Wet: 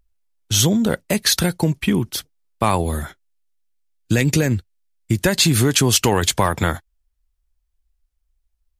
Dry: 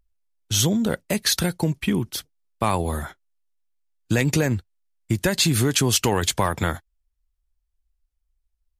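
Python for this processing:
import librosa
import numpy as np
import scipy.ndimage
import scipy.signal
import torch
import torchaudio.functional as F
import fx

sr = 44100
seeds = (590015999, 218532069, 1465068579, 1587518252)

y = fx.peak_eq(x, sr, hz=920.0, db=-6.5, octaves=1.3, at=(2.84, 5.16))
y = y * 10.0 ** (4.0 / 20.0)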